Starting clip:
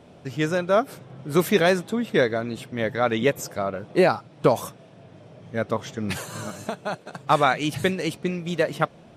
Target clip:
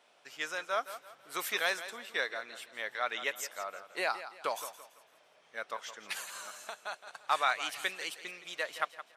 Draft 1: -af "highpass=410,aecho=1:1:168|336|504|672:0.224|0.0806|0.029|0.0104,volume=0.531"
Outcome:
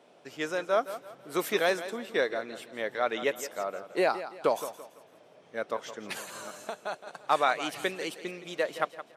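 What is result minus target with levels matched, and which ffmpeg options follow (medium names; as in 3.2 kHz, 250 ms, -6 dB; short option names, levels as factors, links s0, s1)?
500 Hz band +6.5 dB
-af "highpass=1100,aecho=1:1:168|336|504|672:0.224|0.0806|0.029|0.0104,volume=0.531"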